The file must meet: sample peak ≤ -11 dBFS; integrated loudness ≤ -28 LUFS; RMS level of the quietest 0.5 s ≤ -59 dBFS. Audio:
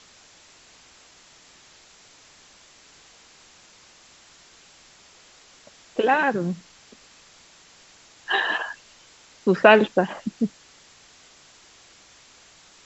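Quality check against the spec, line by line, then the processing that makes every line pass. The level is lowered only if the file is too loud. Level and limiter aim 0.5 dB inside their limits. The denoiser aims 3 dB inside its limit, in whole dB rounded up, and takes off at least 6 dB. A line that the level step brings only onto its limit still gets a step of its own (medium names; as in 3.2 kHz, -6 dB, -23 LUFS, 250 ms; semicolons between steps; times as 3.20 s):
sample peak -2.0 dBFS: fail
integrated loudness -22.0 LUFS: fail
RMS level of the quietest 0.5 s -53 dBFS: fail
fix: trim -6.5 dB; peak limiter -11.5 dBFS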